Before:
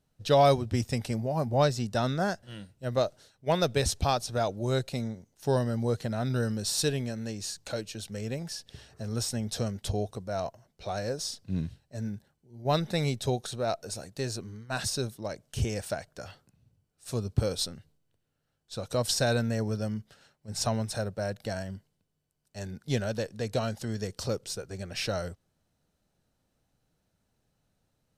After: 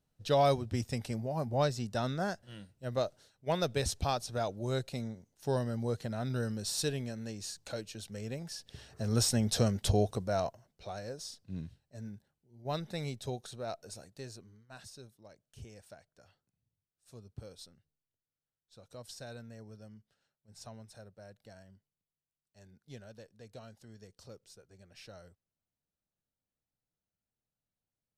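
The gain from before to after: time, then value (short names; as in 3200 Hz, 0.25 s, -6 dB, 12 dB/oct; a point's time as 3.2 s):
8.5 s -5.5 dB
9.14 s +3 dB
10.22 s +3 dB
11.01 s -9.5 dB
13.99 s -9.5 dB
14.89 s -20 dB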